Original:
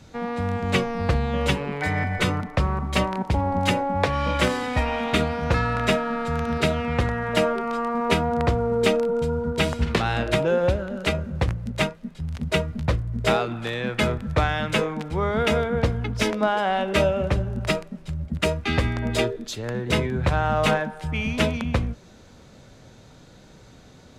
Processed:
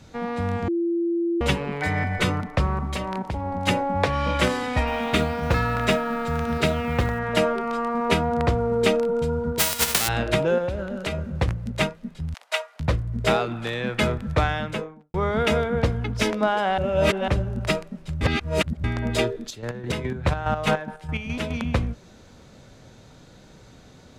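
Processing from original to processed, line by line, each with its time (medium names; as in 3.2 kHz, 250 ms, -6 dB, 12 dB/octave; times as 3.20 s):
0.68–1.41 s: bleep 340 Hz -20.5 dBFS
2.90–3.67 s: compression, threshold -24 dBFS
4.87–7.19 s: short-mantissa float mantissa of 4-bit
9.58–10.07 s: formants flattened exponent 0.1
10.58–11.34 s: compression 10:1, threshold -22 dBFS
12.34–12.80 s: steep high-pass 640 Hz
14.42–15.14 s: studio fade out
16.78–17.28 s: reverse
18.21–18.84 s: reverse
19.42–21.57 s: square tremolo 4.8 Hz, depth 60%, duty 40%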